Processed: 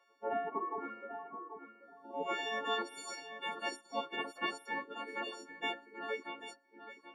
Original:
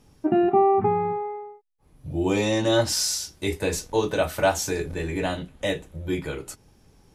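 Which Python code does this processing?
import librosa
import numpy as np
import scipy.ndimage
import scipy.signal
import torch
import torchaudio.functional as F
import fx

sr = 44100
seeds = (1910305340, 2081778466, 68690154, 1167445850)

y = fx.freq_snap(x, sr, grid_st=4)
y = scipy.signal.sosfilt(scipy.signal.butter(2, 1500.0, 'lowpass', fs=sr, output='sos'), y)
y = fx.low_shelf(y, sr, hz=490.0, db=7.5)
y = fx.echo_feedback(y, sr, ms=784, feedback_pct=24, wet_db=-10.0)
y = fx.dereverb_blind(y, sr, rt60_s=0.74)
y = fx.peak_eq(y, sr, hz=660.0, db=-9.5, octaves=0.21)
y = fx.spec_gate(y, sr, threshold_db=-15, keep='weak')
y = scipy.signal.sosfilt(scipy.signal.butter(4, 290.0, 'highpass', fs=sr, output='sos'), y)
y = y * 10.0 ** (-1.5 / 20.0)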